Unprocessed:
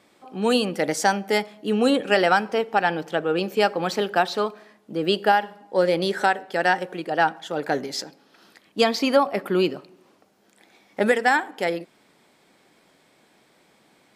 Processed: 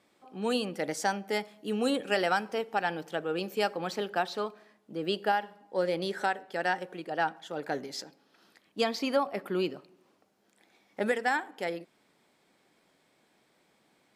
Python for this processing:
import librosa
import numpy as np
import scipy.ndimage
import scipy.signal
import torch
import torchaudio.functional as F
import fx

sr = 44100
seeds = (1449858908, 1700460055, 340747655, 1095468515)

y = fx.high_shelf(x, sr, hz=6100.0, db=7.0, at=(1.43, 3.77))
y = F.gain(torch.from_numpy(y), -9.0).numpy()